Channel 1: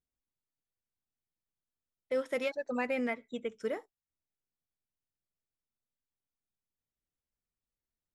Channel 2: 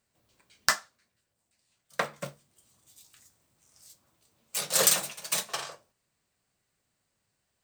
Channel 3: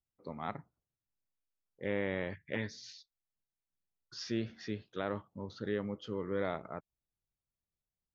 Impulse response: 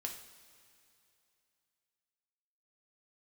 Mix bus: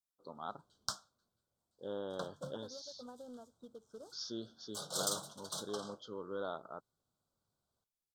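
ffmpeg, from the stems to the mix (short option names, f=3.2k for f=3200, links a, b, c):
-filter_complex "[0:a]acompressor=threshold=-43dB:ratio=2,acrusher=bits=3:mode=log:mix=0:aa=0.000001,adelay=300,volume=-10.5dB[a];[1:a]acrossover=split=190|3000[b][c][d];[c]acompressor=threshold=-40dB:ratio=2.5[e];[b][e][d]amix=inputs=3:normalize=0,adelay=200,volume=-5.5dB[f];[2:a]aemphasis=mode=production:type=riaa,volume=-3dB[g];[a][f][g]amix=inputs=3:normalize=0,asuperstop=centerf=2200:order=12:qfactor=1.3,aemphasis=mode=reproduction:type=50fm"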